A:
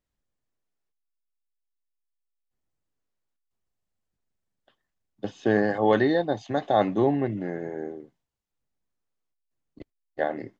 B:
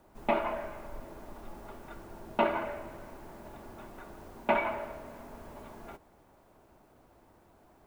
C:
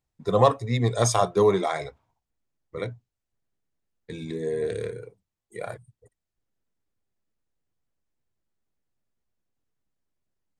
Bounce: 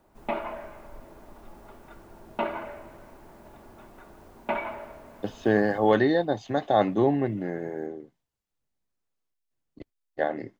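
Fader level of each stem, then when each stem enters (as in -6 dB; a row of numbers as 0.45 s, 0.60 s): 0.0 dB, -2.0 dB, mute; 0.00 s, 0.00 s, mute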